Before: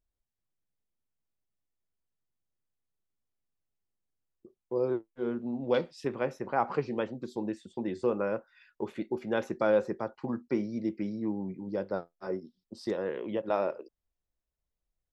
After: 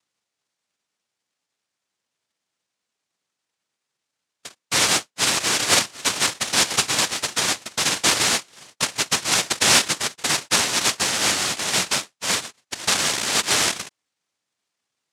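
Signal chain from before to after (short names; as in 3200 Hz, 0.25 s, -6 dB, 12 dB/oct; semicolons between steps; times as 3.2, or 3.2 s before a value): in parallel at +0.5 dB: compressor, threshold -38 dBFS, peak gain reduction 16.5 dB; on the sum: soft clip -19 dBFS, distortion -17 dB; noise vocoder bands 1; gain +9 dB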